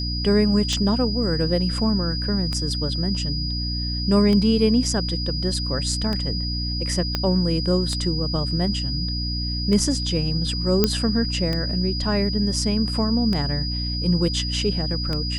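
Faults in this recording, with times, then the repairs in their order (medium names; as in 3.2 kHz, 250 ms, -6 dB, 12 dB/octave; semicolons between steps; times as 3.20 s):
hum 60 Hz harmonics 5 -27 dBFS
tick 33 1/3 rpm -13 dBFS
whine 4.9 kHz -28 dBFS
7.15 s: pop -9 dBFS
10.84 s: pop -3 dBFS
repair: de-click; band-stop 4.9 kHz, Q 30; de-hum 60 Hz, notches 5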